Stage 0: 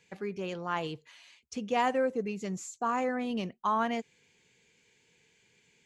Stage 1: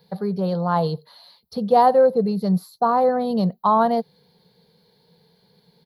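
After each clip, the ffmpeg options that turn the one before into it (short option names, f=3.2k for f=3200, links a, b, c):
-af "firequalizer=gain_entry='entry(120,0);entry(170,13);entry(290,-7);entry(470,7);entry(740,8);entry(2500,-20);entry(4200,10);entry(6900,-29);entry(11000,11)':delay=0.05:min_phase=1,volume=7dB"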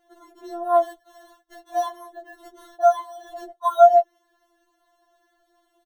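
-filter_complex "[0:a]aecho=1:1:7.2:0.5,acrossover=split=1700[a][b];[b]acrusher=samples=18:mix=1:aa=0.000001[c];[a][c]amix=inputs=2:normalize=0,afftfilt=real='re*4*eq(mod(b,16),0)':imag='im*4*eq(mod(b,16),0)':win_size=2048:overlap=0.75"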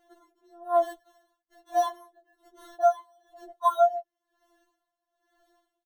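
-af "aeval=exprs='val(0)*pow(10,-22*(0.5-0.5*cos(2*PI*1.1*n/s))/20)':c=same"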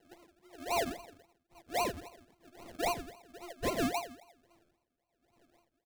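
-af "asoftclip=type=tanh:threshold=-28.5dB,aecho=1:1:85|170|255|340|425:0.224|0.116|0.0605|0.0315|0.0164,acrusher=samples=36:mix=1:aa=0.000001:lfo=1:lforange=21.6:lforate=3.7"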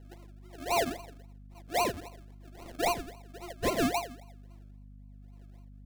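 -filter_complex "[0:a]asplit=2[a][b];[b]aeval=exprs='sgn(val(0))*max(abs(val(0))-0.002,0)':c=same,volume=-7.5dB[c];[a][c]amix=inputs=2:normalize=0,aeval=exprs='val(0)+0.00316*(sin(2*PI*50*n/s)+sin(2*PI*2*50*n/s)/2+sin(2*PI*3*50*n/s)/3+sin(2*PI*4*50*n/s)/4+sin(2*PI*5*50*n/s)/5)':c=same,volume=1dB"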